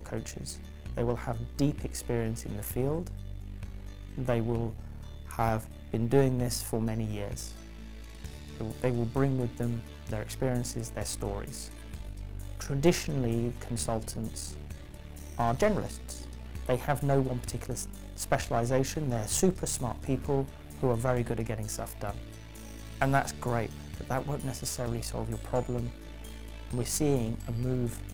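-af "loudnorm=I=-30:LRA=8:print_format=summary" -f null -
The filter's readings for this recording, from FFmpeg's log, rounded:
Input Integrated:    -32.2 LUFS
Input True Peak:      -9.2 dBTP
Input LRA:             3.7 LU
Input Threshold:     -42.9 LUFS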